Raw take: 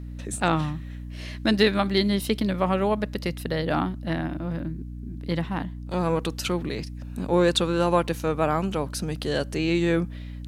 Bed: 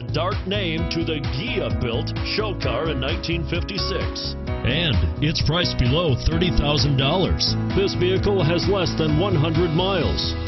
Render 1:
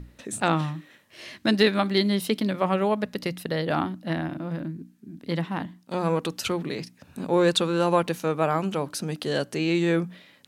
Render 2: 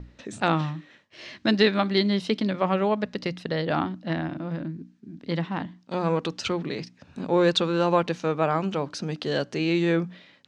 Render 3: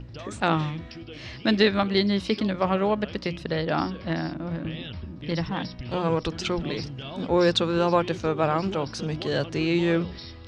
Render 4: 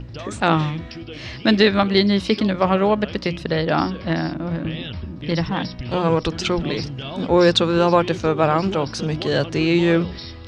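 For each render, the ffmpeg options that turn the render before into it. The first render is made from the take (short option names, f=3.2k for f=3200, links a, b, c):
-af "bandreject=f=60:t=h:w=6,bandreject=f=120:t=h:w=6,bandreject=f=180:t=h:w=6,bandreject=f=240:t=h:w=6,bandreject=f=300:t=h:w=6"
-af "agate=range=-33dB:threshold=-54dB:ratio=3:detection=peak,lowpass=f=6.2k:w=0.5412,lowpass=f=6.2k:w=1.3066"
-filter_complex "[1:a]volume=-17.5dB[a];[0:a][a]amix=inputs=2:normalize=0"
-af "volume=6dB,alimiter=limit=-3dB:level=0:latency=1"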